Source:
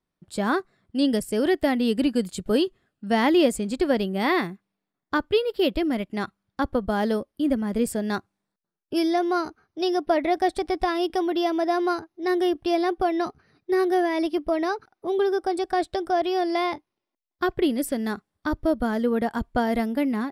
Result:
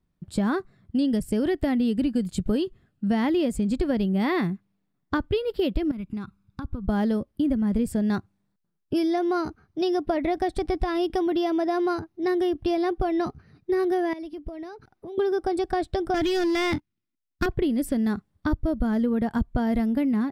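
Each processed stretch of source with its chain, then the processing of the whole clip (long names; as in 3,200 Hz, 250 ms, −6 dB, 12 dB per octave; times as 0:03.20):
0:05.91–0:06.89: downward compressor 4 to 1, threshold −40 dBFS + comb filter 0.8 ms, depth 56%
0:14.13–0:15.18: downward compressor 3 to 1, threshold −42 dBFS + dynamic equaliser 1,200 Hz, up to −5 dB, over −57 dBFS
0:16.14–0:17.46: flat-topped bell 650 Hz −12 dB + leveller curve on the samples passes 3
whole clip: bass and treble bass +14 dB, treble −2 dB; downward compressor, threshold −21 dBFS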